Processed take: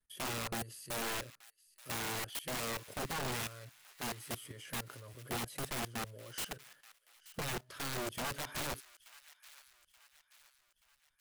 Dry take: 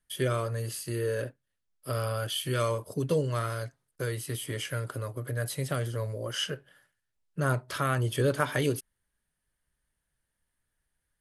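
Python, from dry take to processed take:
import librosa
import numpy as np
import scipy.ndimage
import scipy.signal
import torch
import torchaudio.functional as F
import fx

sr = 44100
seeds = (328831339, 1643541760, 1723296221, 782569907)

y = fx.level_steps(x, sr, step_db=16)
y = (np.mod(10.0 ** (30.0 / 20.0) * y + 1.0, 2.0) - 1.0) / 10.0 ** (30.0 / 20.0)
y = fx.echo_wet_highpass(y, sr, ms=879, feedback_pct=46, hz=1500.0, wet_db=-16.5)
y = y * 10.0 ** (-3.0 / 20.0)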